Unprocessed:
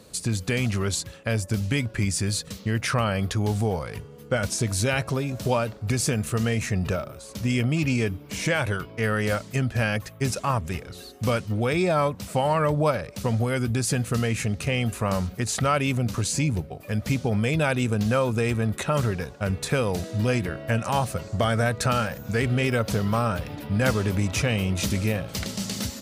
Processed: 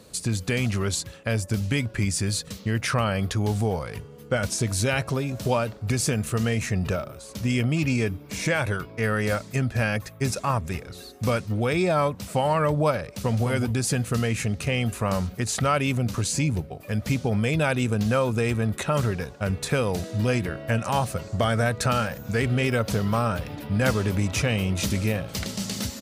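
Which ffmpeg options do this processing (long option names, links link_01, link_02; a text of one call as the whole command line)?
ffmpeg -i in.wav -filter_complex "[0:a]asettb=1/sr,asplit=3[link_01][link_02][link_03];[link_01]atrim=end=7.874[link_04];[link_02]atrim=start=7.87:end=11.52,asetpts=PTS-STARTPTS,afade=type=in:duration=0.004:curve=qsin,afade=type=out:start_time=3.646:duration=0.004:curve=qsin,bandreject=frequency=3000:width=12[link_05];[link_03]atrim=start=11.516[link_06];[link_04][link_05]acrossfade=duration=0.004:curve1=hsin:curve2=qsin[link_07];[link_07][link_06]acrossfade=duration=0.004:curve1=qsin:curve2=hsin,asplit=2[link_08][link_09];[link_09]afade=type=in:start_time=13.03:duration=0.01,afade=type=out:start_time=13.45:duration=0.01,aecho=0:1:210|420|630:0.473151|0.0709727|0.0106459[link_10];[link_08][link_10]amix=inputs=2:normalize=0" out.wav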